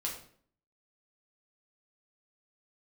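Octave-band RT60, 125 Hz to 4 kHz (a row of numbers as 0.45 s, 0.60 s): 0.70 s, 0.70 s, 0.60 s, 0.50 s, 0.45 s, 0.45 s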